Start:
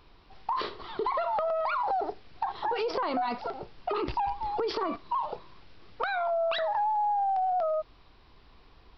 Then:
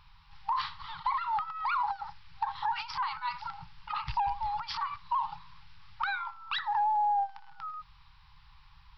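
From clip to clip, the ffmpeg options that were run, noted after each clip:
-af "afftfilt=real='re*(1-between(b*sr/4096,180,790))':imag='im*(1-between(b*sr/4096,180,790))':win_size=4096:overlap=0.75"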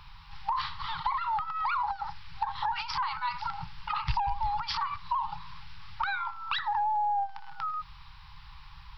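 -filter_complex "[0:a]acrossover=split=150[a][b];[b]acompressor=threshold=-40dB:ratio=2.5[c];[a][c]amix=inputs=2:normalize=0,volume=8.5dB"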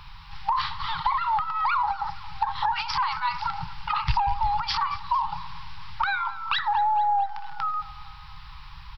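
-af "aecho=1:1:224|448|672|896|1120:0.119|0.0701|0.0414|0.0244|0.0144,volume=5.5dB"

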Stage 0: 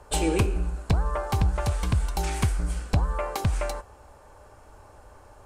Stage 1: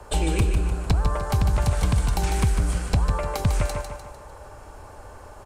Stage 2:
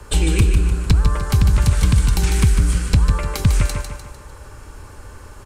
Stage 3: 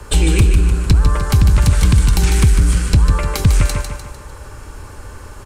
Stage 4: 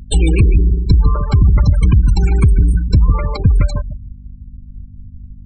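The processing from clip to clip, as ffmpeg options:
-filter_complex "[0:a]acrossover=split=190|1000|3800[a][b][c][d];[a]acompressor=threshold=-25dB:ratio=4[e];[b]acompressor=threshold=-38dB:ratio=4[f];[c]acompressor=threshold=-43dB:ratio=4[g];[d]acompressor=threshold=-43dB:ratio=4[h];[e][f][g][h]amix=inputs=4:normalize=0,asplit=2[i][j];[j]aecho=0:1:150|300|450|600|750:0.473|0.213|0.0958|0.0431|0.0194[k];[i][k]amix=inputs=2:normalize=0,volume=6.5dB"
-af "equalizer=f=700:w=1.4:g=-14,volume=7dB"
-af "acontrast=38,volume=-1dB"
-af "afftfilt=real='re*gte(hypot(re,im),0.158)':imag='im*gte(hypot(re,im),0.158)':win_size=1024:overlap=0.75,aeval=exprs='val(0)+0.0141*(sin(2*PI*50*n/s)+sin(2*PI*2*50*n/s)/2+sin(2*PI*3*50*n/s)/3+sin(2*PI*4*50*n/s)/4+sin(2*PI*5*50*n/s)/5)':c=same,volume=1dB"

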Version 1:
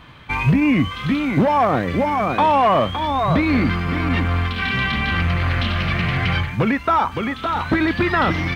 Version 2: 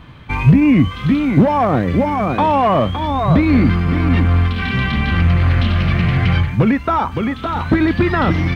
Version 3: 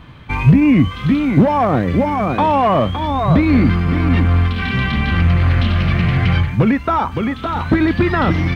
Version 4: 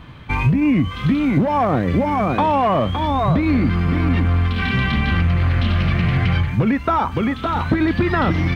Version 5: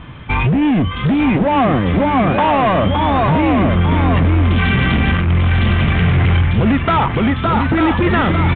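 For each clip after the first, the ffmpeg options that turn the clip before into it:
-af "lowshelf=f=450:g=9,volume=-1.5dB"
-af anull
-af "acompressor=threshold=-13dB:ratio=6"
-af "asoftclip=type=hard:threshold=-17dB,aecho=1:1:895:0.501,aresample=8000,aresample=44100,volume=5.5dB"

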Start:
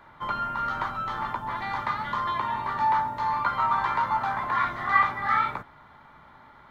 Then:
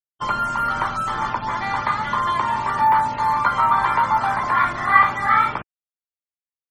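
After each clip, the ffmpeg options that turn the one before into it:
-af "acrusher=bits=5:mix=0:aa=0.5,afftfilt=real='re*gte(hypot(re,im),0.00891)':imag='im*gte(hypot(re,im),0.00891)':win_size=1024:overlap=0.75,bandreject=f=3.8k:w=14,volume=7dB"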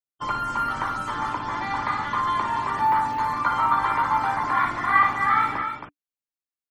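-filter_complex "[0:a]equalizer=f=290:t=o:w=0.22:g=9.5,asplit=2[a][b];[b]aecho=0:1:58.31|271.1:0.398|0.447[c];[a][c]amix=inputs=2:normalize=0,volume=-5dB"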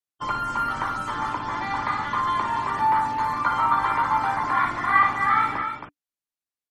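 -af "aresample=32000,aresample=44100"

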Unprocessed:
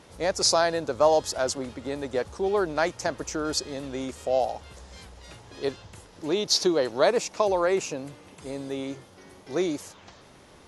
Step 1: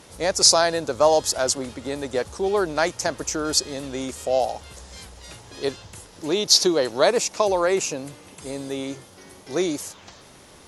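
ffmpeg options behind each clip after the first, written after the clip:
-af "aemphasis=mode=production:type=cd,volume=3dB"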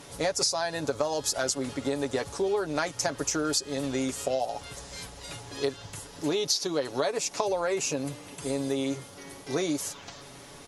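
-af "aecho=1:1:7.1:0.57,acompressor=threshold=-24dB:ratio=12"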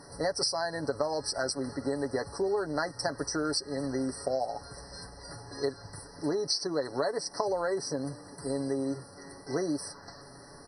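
-af "afftfilt=real='re*eq(mod(floor(b*sr/1024/2000),2),0)':imag='im*eq(mod(floor(b*sr/1024/2000),2),0)':win_size=1024:overlap=0.75,volume=-2dB"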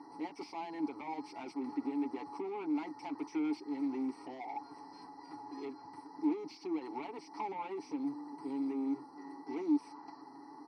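-filter_complex "[0:a]asplit=2[a][b];[b]highpass=f=720:p=1,volume=26dB,asoftclip=type=tanh:threshold=-13.5dB[c];[a][c]amix=inputs=2:normalize=0,lowpass=f=3.6k:p=1,volume=-6dB,asplit=3[d][e][f];[d]bandpass=f=300:t=q:w=8,volume=0dB[g];[e]bandpass=f=870:t=q:w=8,volume=-6dB[h];[f]bandpass=f=2.24k:t=q:w=8,volume=-9dB[i];[g][h][i]amix=inputs=3:normalize=0,volume=-4dB"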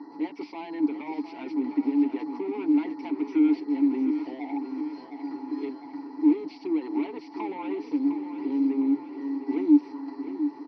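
-af "highpass=200,equalizer=f=290:t=q:w=4:g=7,equalizer=f=790:t=q:w=4:g=-6,equalizer=f=1.2k:t=q:w=4:g=-6,lowpass=f=4.2k:w=0.5412,lowpass=f=4.2k:w=1.3066,aecho=1:1:707|1414|2121|2828|3535|4242|4949:0.335|0.191|0.109|0.062|0.0354|0.0202|0.0115,volume=7dB"

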